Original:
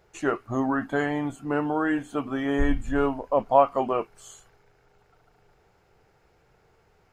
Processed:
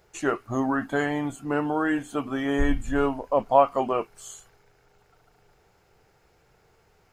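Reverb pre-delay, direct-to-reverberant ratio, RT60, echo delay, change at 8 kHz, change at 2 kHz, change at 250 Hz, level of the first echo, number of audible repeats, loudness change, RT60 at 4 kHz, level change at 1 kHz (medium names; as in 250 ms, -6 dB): no reverb, no reverb, no reverb, no echo, no reading, +1.0 dB, 0.0 dB, no echo, no echo, 0.0 dB, no reverb, +0.5 dB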